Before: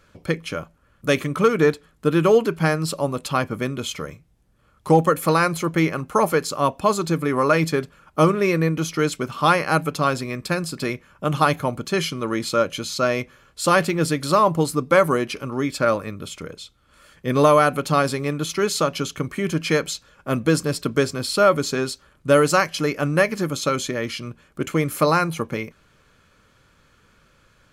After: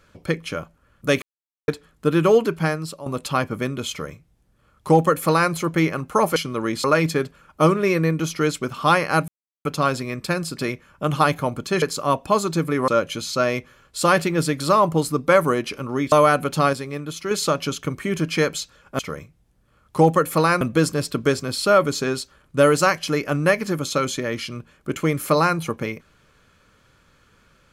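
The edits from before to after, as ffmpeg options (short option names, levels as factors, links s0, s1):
-filter_complex "[0:a]asplit=14[s0][s1][s2][s3][s4][s5][s6][s7][s8][s9][s10][s11][s12][s13];[s0]atrim=end=1.22,asetpts=PTS-STARTPTS,afade=t=out:st=1.216:d=0.004:c=hsin[s14];[s1]atrim=start=1.22:end=1.68,asetpts=PTS-STARTPTS,volume=0[s15];[s2]atrim=start=1.68:end=3.06,asetpts=PTS-STARTPTS,afade=t=in:d=0.004:c=hsin,afade=t=out:st=0.84:d=0.54:silence=0.188365[s16];[s3]atrim=start=3.06:end=6.362,asetpts=PTS-STARTPTS,afade=t=in:d=0.004:c=hsin:silence=0.188365[s17];[s4]atrim=start=12.028:end=12.512[s18];[s5]atrim=start=7.418:end=9.86,asetpts=PTS-STARTPTS,afade=t=out:st=2.438:d=0.004:c=hsin,apad=pad_dur=0.37[s19];[s6]atrim=start=9.86:end=12.032,asetpts=PTS-STARTPTS,afade=t=in:d=0.004:c=hsin[s20];[s7]atrim=start=6.358:end=7.422[s21];[s8]atrim=start=12.508:end=15.752[s22];[s9]atrim=start=17.448:end=18.062[s23];[s10]atrim=start=18.058:end=18.642,asetpts=PTS-STARTPTS,volume=0.531[s24];[s11]atrim=start=18.638:end=20.322[s25];[s12]atrim=start=3.898:end=5.522[s26];[s13]atrim=start=20.318[s27];[s14][s15][s16][s17]concat=n=4:v=0:a=1[s28];[s28][s18]acrossfade=d=0.004:c1=hsin:c2=hsin[s29];[s19][s20]concat=n=2:v=0:a=1[s30];[s29][s30]acrossfade=d=0.004:c1=hsin:c2=hsin[s31];[s31][s21]acrossfade=d=0.004:c1=hsin:c2=hsin[s32];[s32][s22]acrossfade=d=0.004:c1=hsin:c2=hsin[s33];[s33][s23]acrossfade=d=0.004:c1=hsin:c2=hsin[s34];[s34][s24]acrossfade=d=0.004:c1=hsin:c2=hsin[s35];[s35][s25]acrossfade=d=0.004:c1=hsin:c2=hsin[s36];[s36][s26]acrossfade=d=0.004:c1=hsin:c2=hsin[s37];[s37][s27]acrossfade=d=0.004:c1=hsin:c2=hsin"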